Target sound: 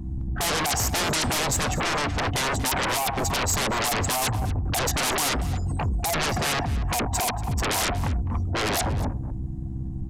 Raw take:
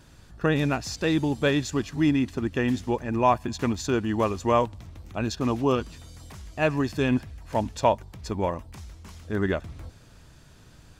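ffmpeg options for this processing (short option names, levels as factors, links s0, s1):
-filter_complex "[0:a]afftdn=nr=28:nf=-45,firequalizer=gain_entry='entry(110,0);entry(170,-4);entry(240,1);entry(460,-28);entry(660,15);entry(1300,-8);entry(4200,-16);entry(6400,-6)':delay=0.05:min_phase=1,aeval=exprs='val(0)+0.00251*(sin(2*PI*60*n/s)+sin(2*PI*2*60*n/s)/2+sin(2*PI*3*60*n/s)/3+sin(2*PI*4*60*n/s)/4+sin(2*PI*5*60*n/s)/5)':c=same,acrossover=split=460[s0][s1];[s0]acompressor=threshold=0.0282:ratio=3[s2];[s2][s1]amix=inputs=2:normalize=0,alimiter=limit=0.282:level=0:latency=1:release=401,asoftclip=type=hard:threshold=0.0501,acompressor=mode=upward:threshold=0.00251:ratio=2.5,aeval=exprs='0.0501*sin(PI/2*4.47*val(0)/0.0501)':c=same,asplit=2[s3][s4];[s4]adelay=256.6,volume=0.2,highshelf=f=4000:g=-5.77[s5];[s3][s5]amix=inputs=2:normalize=0,asetrate=48000,aresample=44100,aresample=32000,aresample=44100,adynamicequalizer=threshold=0.00562:dfrequency=5200:dqfactor=0.7:tfrequency=5200:tqfactor=0.7:attack=5:release=100:ratio=0.375:range=2:mode=boostabove:tftype=highshelf,volume=1.58"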